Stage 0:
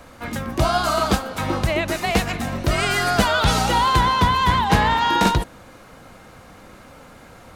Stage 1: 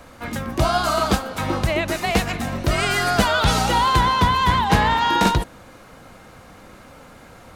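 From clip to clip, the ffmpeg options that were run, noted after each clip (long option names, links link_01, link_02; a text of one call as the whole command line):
ffmpeg -i in.wav -af anull out.wav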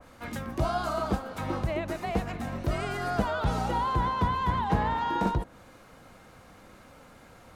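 ffmpeg -i in.wav -filter_complex "[0:a]acrossover=split=1100[link_01][link_02];[link_02]alimiter=limit=-21dB:level=0:latency=1:release=163[link_03];[link_01][link_03]amix=inputs=2:normalize=0,adynamicequalizer=threshold=0.0126:dfrequency=2200:dqfactor=0.7:tfrequency=2200:tqfactor=0.7:attack=5:release=100:ratio=0.375:range=3.5:mode=cutabove:tftype=highshelf,volume=-8dB" out.wav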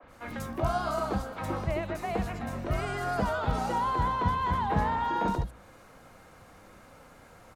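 ffmpeg -i in.wav -filter_complex "[0:a]bandreject=frequency=60:width_type=h:width=6,bandreject=frequency=120:width_type=h:width=6,acrossover=split=240|3500[link_01][link_02][link_03];[link_01]adelay=30[link_04];[link_03]adelay=70[link_05];[link_04][link_02][link_05]amix=inputs=3:normalize=0" out.wav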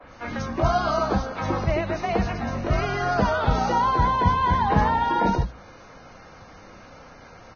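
ffmpeg -i in.wav -af "volume=7dB" -ar 16000 -c:a libvorbis -b:a 16k out.ogg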